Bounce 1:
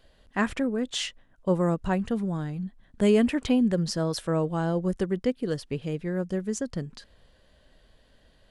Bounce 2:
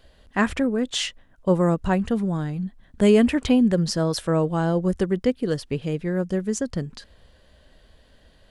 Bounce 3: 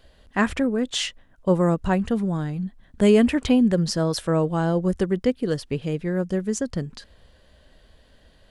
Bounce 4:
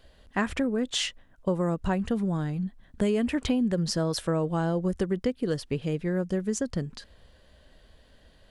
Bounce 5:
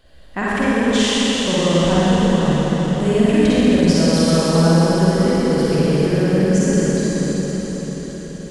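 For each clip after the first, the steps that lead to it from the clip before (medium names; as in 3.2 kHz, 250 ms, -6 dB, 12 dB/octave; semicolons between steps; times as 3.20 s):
peaking EQ 68 Hz +8.5 dB 0.21 oct; trim +4.5 dB
no audible change
compression 6:1, threshold -20 dBFS, peak gain reduction 8.5 dB; trim -2 dB
reverberation RT60 5.7 s, pre-delay 42 ms, DRR -10.5 dB; trim +2 dB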